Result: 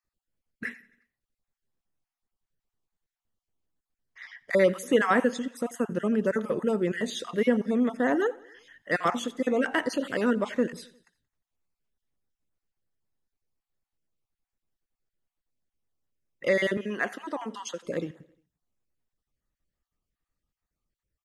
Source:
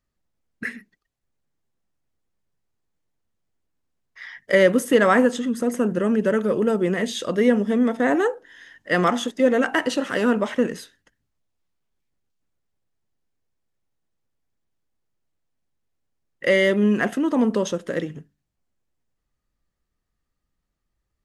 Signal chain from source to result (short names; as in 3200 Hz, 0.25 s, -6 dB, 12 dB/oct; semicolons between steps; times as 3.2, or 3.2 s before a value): random spectral dropouts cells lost 30%; 16.77–17.85 weighting filter A; feedback echo 88 ms, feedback 57%, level -22.5 dB; gain -5 dB